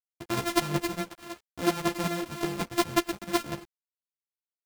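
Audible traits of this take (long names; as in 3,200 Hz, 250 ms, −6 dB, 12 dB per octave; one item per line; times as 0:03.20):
a buzz of ramps at a fixed pitch in blocks of 128 samples
chopped level 5.4 Hz, depth 60%, duty 15%
a quantiser's noise floor 10 bits, dither none
a shimmering, thickened sound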